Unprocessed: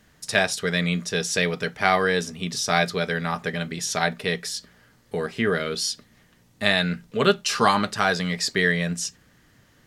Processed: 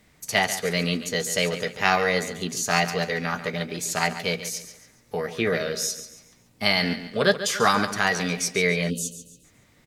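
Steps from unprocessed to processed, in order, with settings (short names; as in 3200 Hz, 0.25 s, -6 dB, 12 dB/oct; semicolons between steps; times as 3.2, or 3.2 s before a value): formant shift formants +3 st; feedback echo 0.14 s, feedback 36%, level -12 dB; spectral gain 8.9–9.44, 600–2500 Hz -29 dB; gain -1 dB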